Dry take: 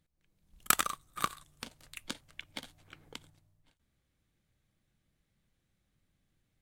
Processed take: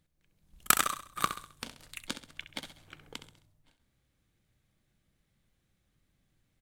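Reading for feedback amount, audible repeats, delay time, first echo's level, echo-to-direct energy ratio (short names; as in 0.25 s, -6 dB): 43%, 4, 66 ms, -11.0 dB, -10.0 dB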